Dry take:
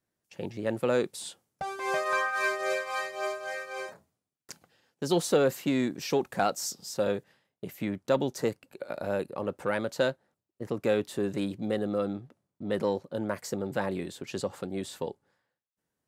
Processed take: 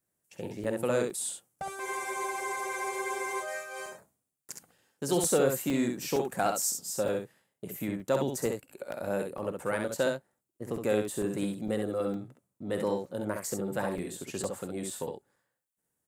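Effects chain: resonant high shelf 6400 Hz +8 dB, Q 1.5; on a send: early reflections 50 ms -13.5 dB, 66 ms -5 dB; on the sum: crackling interface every 0.46 s, samples 128, zero, from 0.64; spectral freeze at 1.85, 1.58 s; gain -2.5 dB

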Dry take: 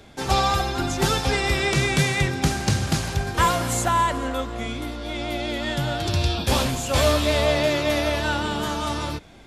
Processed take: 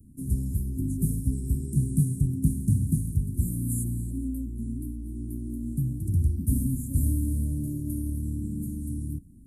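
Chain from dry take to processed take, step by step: Chebyshev band-stop 270–9300 Hz, order 4

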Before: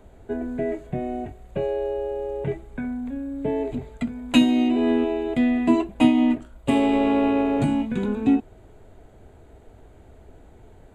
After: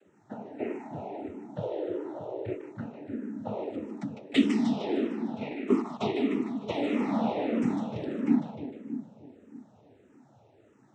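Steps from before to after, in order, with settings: noise vocoder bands 12; 5.07–5.87 gate -19 dBFS, range -7 dB; on a send: split-band echo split 550 Hz, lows 0.31 s, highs 0.152 s, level -6 dB; on the sum: endless phaser -1.6 Hz; gain -5.5 dB

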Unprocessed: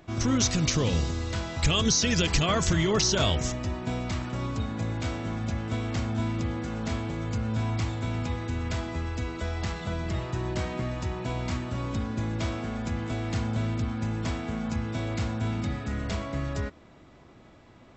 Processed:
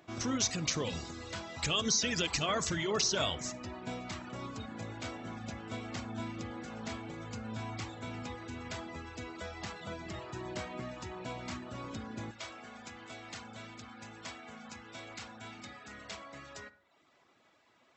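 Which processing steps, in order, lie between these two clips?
HPF 300 Hz 6 dB/oct, from 12.31 s 1200 Hz; reverb removal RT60 0.68 s; reverb RT60 0.55 s, pre-delay 42 ms, DRR 15.5 dB; gain -4.5 dB

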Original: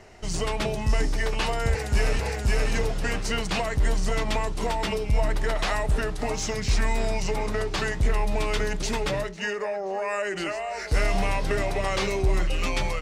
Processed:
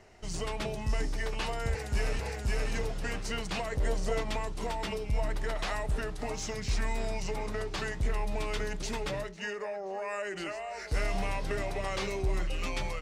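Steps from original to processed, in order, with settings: 3.72–4.21 bell 530 Hz +9.5 dB 0.83 oct; gain -7.5 dB

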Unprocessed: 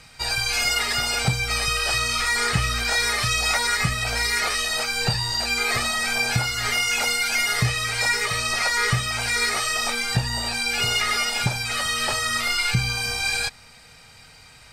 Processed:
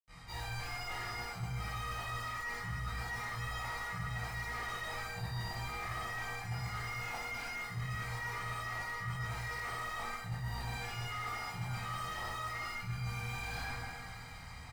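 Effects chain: tracing distortion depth 0.059 ms; in parallel at -8 dB: wrapped overs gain 23.5 dB; on the sum: comb 1 ms, depth 47%; thinning echo 0.136 s, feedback 84%, level -20.5 dB; reverb RT60 1.8 s, pre-delay 78 ms; reverse; compressor 12:1, threshold -45 dBFS, peak gain reduction 19 dB; reverse; slew limiter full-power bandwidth 9.1 Hz; gain +9 dB

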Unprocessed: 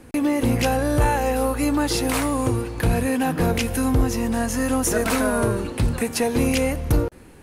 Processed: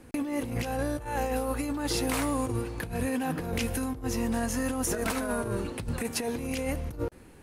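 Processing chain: negative-ratio compressor -22 dBFS, ratio -0.5; gain -7.5 dB

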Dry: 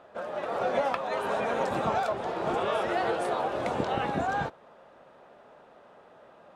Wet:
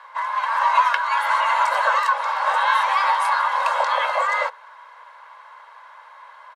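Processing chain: comb 1.8 ms, depth 51%; frequency shift +440 Hz; gain +8 dB

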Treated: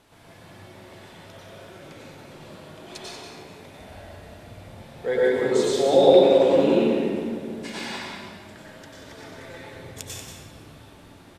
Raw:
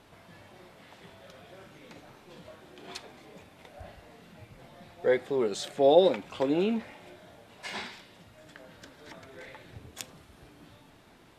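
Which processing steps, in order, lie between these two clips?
bell 9200 Hz +5.5 dB 1.6 oct; echo 0.185 s -8.5 dB; reverb RT60 2.1 s, pre-delay 88 ms, DRR -6.5 dB; gain -2 dB

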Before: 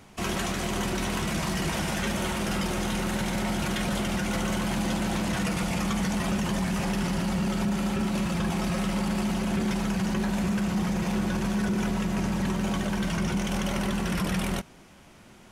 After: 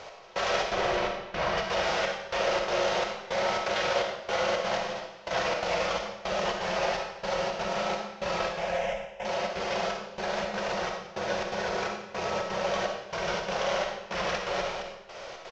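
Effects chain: CVSD 32 kbps; limiter -29 dBFS, peak gain reduction 11.5 dB; 0.71–1.58 tone controls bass +5 dB, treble -10 dB; 8.52–9.25 fixed phaser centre 1200 Hz, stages 6; echo 0.251 s -6.5 dB; step gate "x...xxx.xxx" 168 bpm -24 dB; 4.77–5.31 compressor 4:1, threshold -41 dBFS, peak gain reduction 8 dB; resonant low shelf 360 Hz -12 dB, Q 3; digital reverb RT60 0.87 s, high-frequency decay 0.95×, pre-delay 10 ms, DRR 1.5 dB; gain +8 dB

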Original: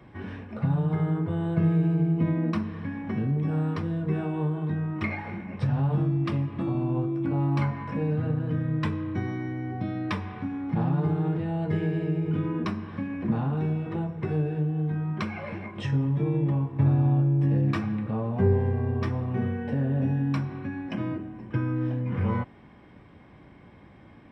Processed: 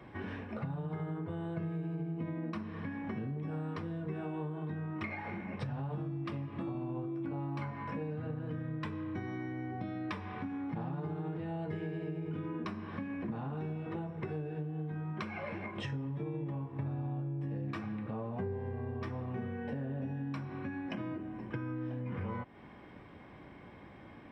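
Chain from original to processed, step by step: tone controls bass -5 dB, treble -3 dB; compressor 4:1, threshold -38 dBFS, peak gain reduction 15 dB; gain +1 dB

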